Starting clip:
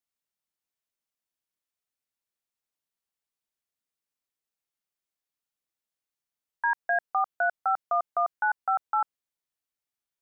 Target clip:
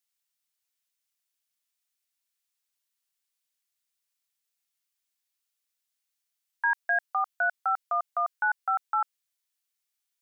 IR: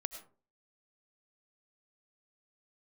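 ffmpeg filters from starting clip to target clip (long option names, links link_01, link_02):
-af "tiltshelf=frequency=1100:gain=-9,volume=-1dB"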